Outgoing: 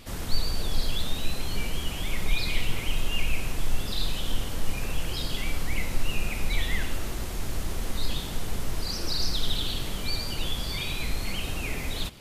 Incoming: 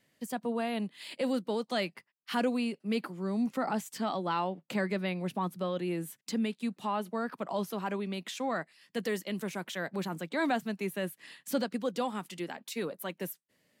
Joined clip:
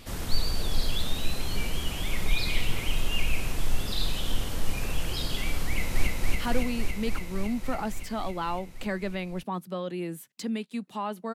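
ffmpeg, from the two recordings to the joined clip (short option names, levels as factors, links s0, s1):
-filter_complex "[0:a]apad=whole_dur=11.34,atrim=end=11.34,atrim=end=6.072[s0];[1:a]atrim=start=1.958:end=7.23[s1];[s0][s1]acrossfade=d=0.004:c1=hsin:c2=hsin,asplit=2[s2][s3];[s3]afade=t=in:st=5.67:d=0.01,afade=t=out:st=6.07:d=0.01,aecho=0:1:280|560|840|1120|1400|1680|1960|2240|2520|2800|3080|3360:0.891251|0.713001|0.570401|0.45632|0.365056|0.292045|0.233636|0.186909|0.149527|0.119622|0.0956973|0.0765579[s4];[s2][s4]amix=inputs=2:normalize=0"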